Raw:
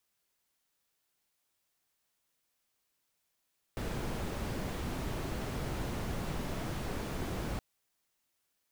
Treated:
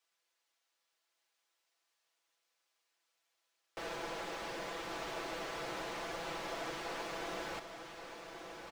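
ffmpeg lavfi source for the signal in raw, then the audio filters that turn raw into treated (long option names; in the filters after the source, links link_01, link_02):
-f lavfi -i "anoisesrc=color=brown:amplitude=0.0741:duration=3.82:sample_rate=44100:seed=1"
-filter_complex "[0:a]acrossover=split=380 7100:gain=0.0794 1 0.224[link_01][link_02][link_03];[link_01][link_02][link_03]amix=inputs=3:normalize=0,aecho=1:1:6:0.65,asplit=2[link_04][link_05];[link_05]aecho=0:1:1126:0.447[link_06];[link_04][link_06]amix=inputs=2:normalize=0"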